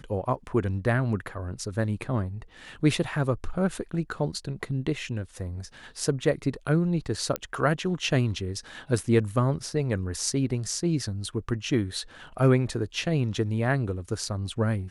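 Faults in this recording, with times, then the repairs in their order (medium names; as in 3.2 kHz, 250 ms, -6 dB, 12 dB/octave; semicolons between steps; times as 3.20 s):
7.36 s: pop -12 dBFS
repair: de-click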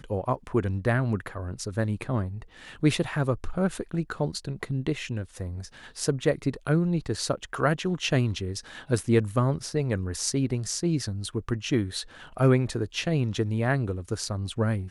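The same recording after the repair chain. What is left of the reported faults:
nothing left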